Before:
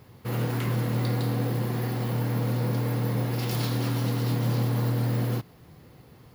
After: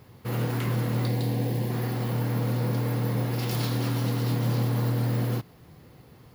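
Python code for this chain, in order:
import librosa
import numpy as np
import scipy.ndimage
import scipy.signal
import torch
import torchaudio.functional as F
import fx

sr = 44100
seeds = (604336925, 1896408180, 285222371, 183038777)

y = fx.peak_eq(x, sr, hz=1300.0, db=-13.5, octaves=0.43, at=(1.07, 1.71))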